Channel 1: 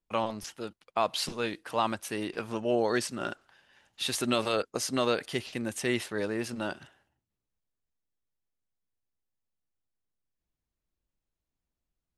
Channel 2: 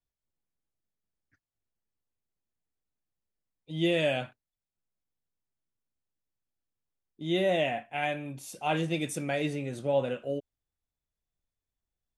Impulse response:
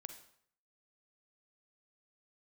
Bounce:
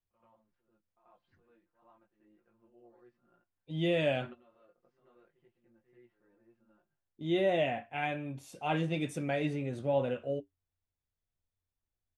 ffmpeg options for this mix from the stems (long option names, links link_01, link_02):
-filter_complex "[0:a]lowpass=1800,flanger=delay=16.5:depth=4.8:speed=0.33,aecho=1:1:5.7:0.77,volume=-13.5dB,asplit=2[link_01][link_02];[link_02]volume=-17dB[link_03];[1:a]equalizer=frequency=91:width=7:gain=12,volume=2.5dB,asplit=2[link_04][link_05];[link_05]apad=whole_len=537272[link_06];[link_01][link_06]sidechaingate=range=-26dB:threshold=-41dB:ratio=16:detection=peak[link_07];[link_03]aecho=0:1:88:1[link_08];[link_07][link_04][link_08]amix=inputs=3:normalize=0,highshelf=frequency=4600:gain=-11.5,flanger=delay=7.3:depth=1.5:regen=-62:speed=0.23:shape=sinusoidal"